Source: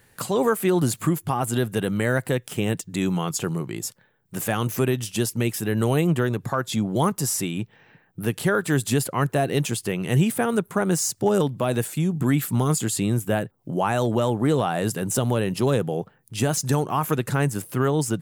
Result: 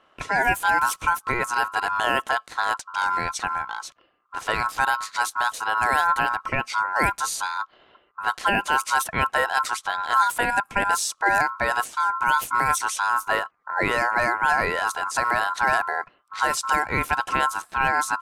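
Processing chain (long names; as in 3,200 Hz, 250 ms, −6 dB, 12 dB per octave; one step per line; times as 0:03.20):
ring modulation 1,200 Hz
low-pass that shuts in the quiet parts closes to 2,700 Hz, open at −19.5 dBFS
level +2.5 dB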